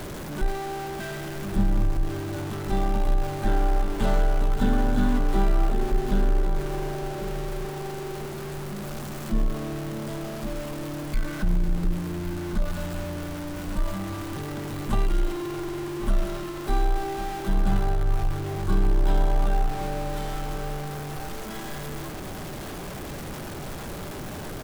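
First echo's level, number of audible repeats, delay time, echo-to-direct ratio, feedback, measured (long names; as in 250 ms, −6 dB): −12.0 dB, 1, 1,103 ms, −12.0 dB, repeats not evenly spaced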